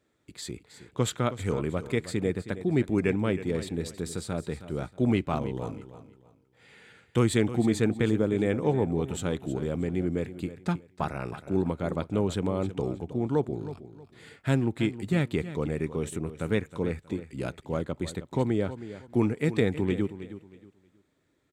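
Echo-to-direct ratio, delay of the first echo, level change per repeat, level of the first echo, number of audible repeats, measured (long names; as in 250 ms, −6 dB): −13.0 dB, 317 ms, −11.5 dB, −13.5 dB, 2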